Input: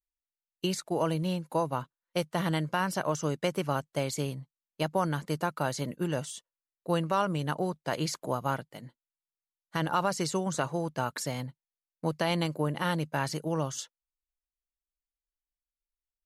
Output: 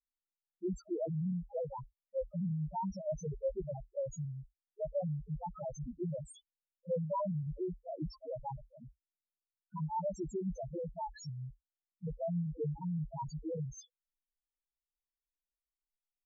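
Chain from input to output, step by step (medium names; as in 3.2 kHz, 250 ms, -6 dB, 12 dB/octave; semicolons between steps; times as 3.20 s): octave divider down 2 oct, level -3 dB; peaking EQ 77 Hz -8.5 dB 0.95 oct; loudest bins only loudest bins 1; trim +2.5 dB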